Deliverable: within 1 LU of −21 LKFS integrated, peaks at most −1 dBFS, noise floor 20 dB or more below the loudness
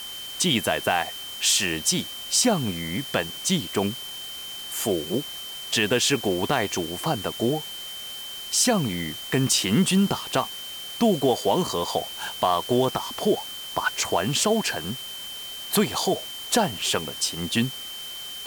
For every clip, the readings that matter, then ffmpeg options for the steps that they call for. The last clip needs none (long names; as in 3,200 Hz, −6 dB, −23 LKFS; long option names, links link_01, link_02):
interfering tone 3,100 Hz; level of the tone −35 dBFS; background noise floor −36 dBFS; target noise floor −45 dBFS; integrated loudness −24.5 LKFS; sample peak −7.5 dBFS; target loudness −21.0 LKFS
→ -af "bandreject=frequency=3100:width=30"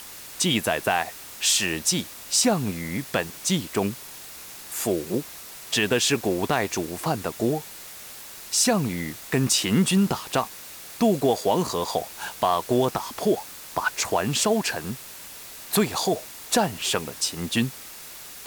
interfering tone none found; background noise floor −41 dBFS; target noise floor −45 dBFS
→ -af "afftdn=noise_reduction=6:noise_floor=-41"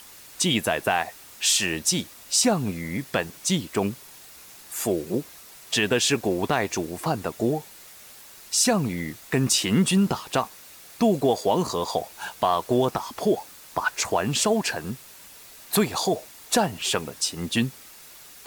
background noise floor −47 dBFS; integrated loudness −24.5 LKFS; sample peak −8.0 dBFS; target loudness −21.0 LKFS
→ -af "volume=3.5dB"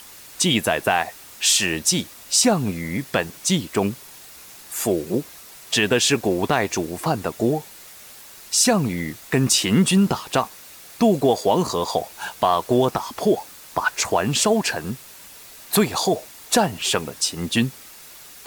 integrated loudness −21.0 LKFS; sample peak −4.5 dBFS; background noise floor −43 dBFS